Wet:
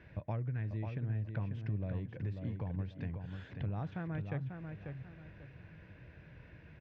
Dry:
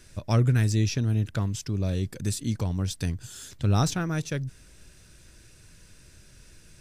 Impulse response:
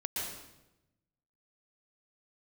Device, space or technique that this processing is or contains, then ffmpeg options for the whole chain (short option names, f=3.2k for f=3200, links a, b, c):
bass amplifier: -filter_complex "[0:a]acompressor=threshold=-38dB:ratio=6,highpass=83,equalizer=f=240:t=q:w=4:g=-6,equalizer=f=380:t=q:w=4:g=-6,equalizer=f=1.3k:t=q:w=4:g=-9,lowpass=f=2.2k:w=0.5412,lowpass=f=2.2k:w=1.3066,asplit=2[a][b];[b]adelay=542,lowpass=f=3.7k:p=1,volume=-6dB,asplit=2[c][d];[d]adelay=542,lowpass=f=3.7k:p=1,volume=0.31,asplit=2[e][f];[f]adelay=542,lowpass=f=3.7k:p=1,volume=0.31,asplit=2[g][h];[h]adelay=542,lowpass=f=3.7k:p=1,volume=0.31[i];[a][c][e][g][i]amix=inputs=5:normalize=0,volume=3dB"